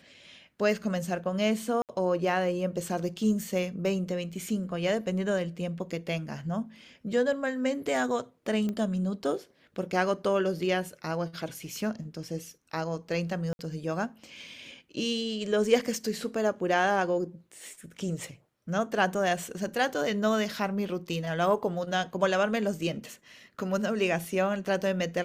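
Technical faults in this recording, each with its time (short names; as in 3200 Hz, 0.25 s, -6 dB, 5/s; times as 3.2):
1.82–1.89 gap 68 ms
8.69 pop -21 dBFS
13.53–13.59 gap 61 ms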